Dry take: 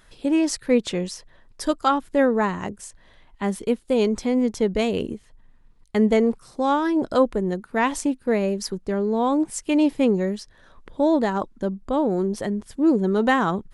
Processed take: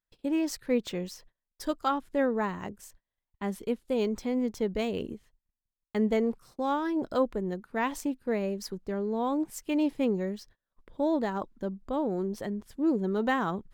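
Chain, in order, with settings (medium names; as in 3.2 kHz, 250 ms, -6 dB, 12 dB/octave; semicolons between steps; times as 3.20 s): gate -45 dBFS, range -31 dB; decimation joined by straight lines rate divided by 2×; trim -8 dB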